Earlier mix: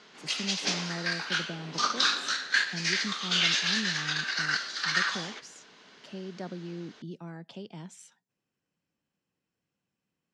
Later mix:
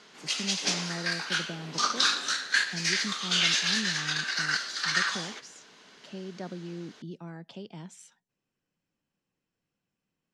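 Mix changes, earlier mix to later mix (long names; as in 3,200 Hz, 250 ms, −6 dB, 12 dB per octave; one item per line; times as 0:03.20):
speech: remove high-pass filter 52 Hz
background: remove low-pass filter 5,900 Hz 12 dB per octave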